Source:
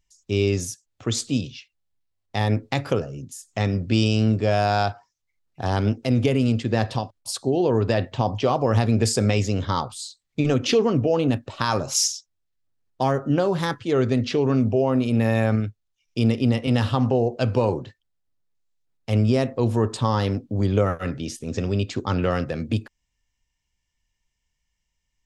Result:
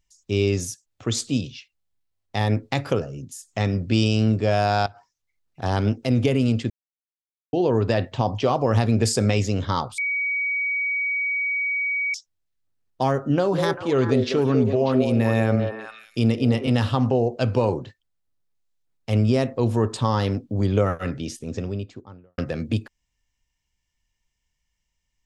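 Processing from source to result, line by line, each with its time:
4.86–5.62 s: compression 10:1, threshold -36 dBFS
6.70–7.53 s: mute
9.98–12.14 s: bleep 2.26 kHz -21.5 dBFS
13.33–16.70 s: repeats whose band climbs or falls 197 ms, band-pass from 480 Hz, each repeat 1.4 oct, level -2.5 dB
21.17–22.38 s: studio fade out

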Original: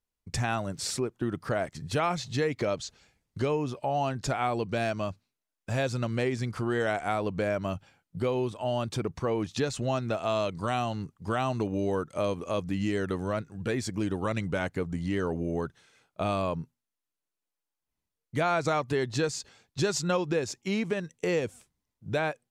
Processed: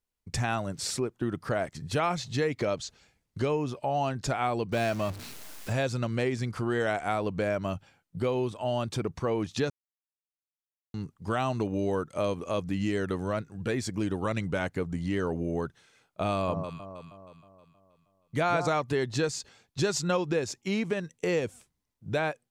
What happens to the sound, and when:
4.72–5.73 s: jump at every zero crossing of -36 dBFS
9.70–10.94 s: mute
16.32–18.68 s: echo whose repeats swap between lows and highs 158 ms, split 1.2 kHz, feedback 67%, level -6.5 dB

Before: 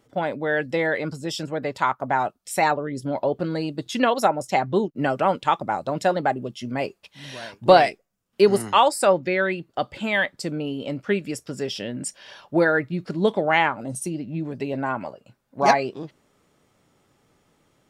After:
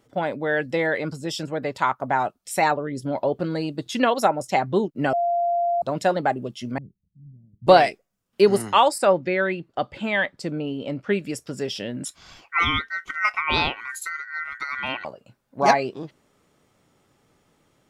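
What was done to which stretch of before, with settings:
5.13–5.82 s: bleep 692 Hz -19 dBFS
6.78–7.67 s: inverse Chebyshev low-pass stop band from 1.1 kHz, stop band 80 dB
8.98–11.13 s: treble shelf 6.1 kHz -11 dB
12.05–15.05 s: ring modulator 1.7 kHz

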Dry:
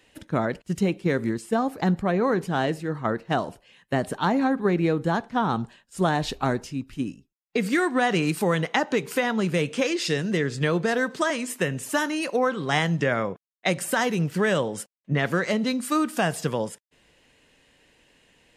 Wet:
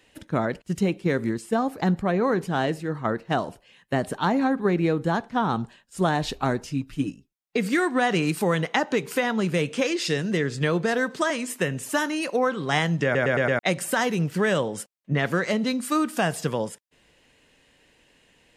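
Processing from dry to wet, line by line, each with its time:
6.67–7.10 s: comb 6.6 ms, depth 83%
13.04 s: stutter in place 0.11 s, 5 plays

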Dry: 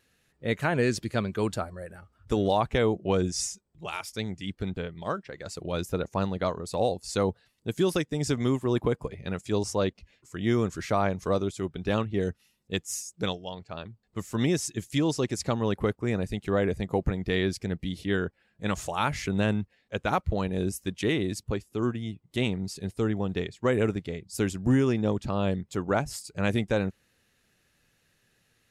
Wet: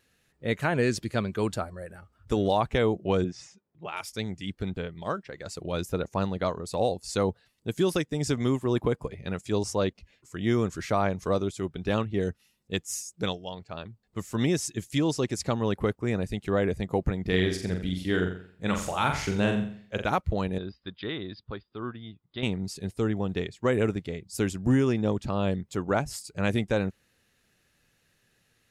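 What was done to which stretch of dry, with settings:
3.24–3.97 s: band-pass 140–2400 Hz
17.21–20.04 s: flutter echo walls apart 7.5 m, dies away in 0.51 s
20.58–22.43 s: rippled Chebyshev low-pass 5 kHz, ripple 9 dB

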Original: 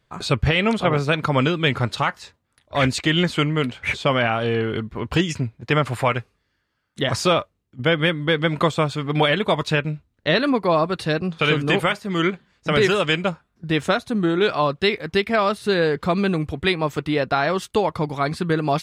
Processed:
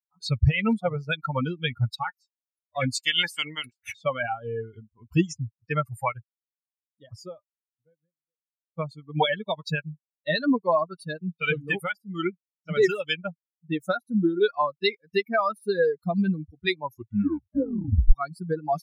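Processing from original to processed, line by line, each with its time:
2.98–3.91 s: spectral peaks clipped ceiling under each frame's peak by 18 dB
5.86–8.78 s: studio fade out
16.75 s: tape stop 1.38 s
whole clip: expander on every frequency bin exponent 3; bass shelf 110 Hz +7.5 dB; trim +1.5 dB

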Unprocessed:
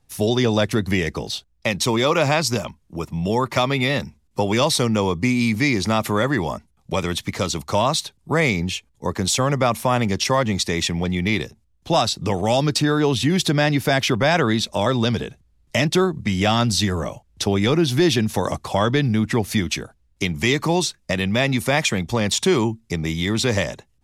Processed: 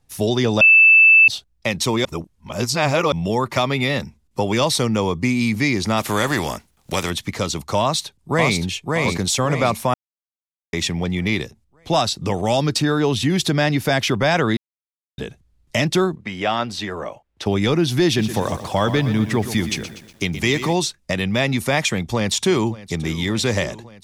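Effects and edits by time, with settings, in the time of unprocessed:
0.61–1.28 s: bleep 2.64 kHz -7 dBFS
2.05–3.12 s: reverse
5.97–7.09 s: spectral contrast reduction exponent 0.63
7.81–8.60 s: echo throw 570 ms, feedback 45%, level -2.5 dB
9.94–10.73 s: mute
14.57–15.18 s: mute
16.15–17.46 s: tone controls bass -14 dB, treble -14 dB
18.06–20.73 s: bit-crushed delay 121 ms, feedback 55%, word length 7-bit, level -11 dB
21.92–22.98 s: echo throw 570 ms, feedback 75%, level -18 dB

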